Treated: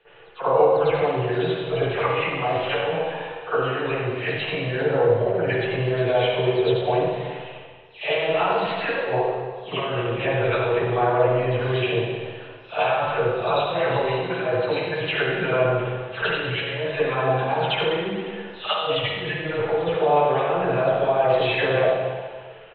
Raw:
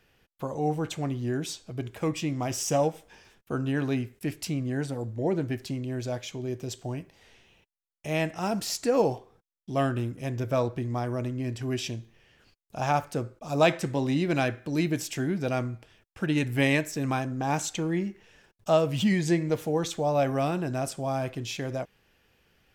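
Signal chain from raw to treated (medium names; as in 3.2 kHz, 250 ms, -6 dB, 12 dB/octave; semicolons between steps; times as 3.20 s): delay that grows with frequency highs early, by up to 284 ms; compressor with a negative ratio -32 dBFS, ratio -0.5; peak limiter -24.5 dBFS, peak gain reduction 7 dB; rippled Chebyshev low-pass 4 kHz, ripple 3 dB; resonant low shelf 350 Hz -7.5 dB, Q 3; hum notches 50/100/150 Hz; frequency-shifting echo 135 ms, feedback 59%, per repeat +81 Hz, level -22 dB; reverberation RT60 1.5 s, pre-delay 47 ms, DRR -17 dB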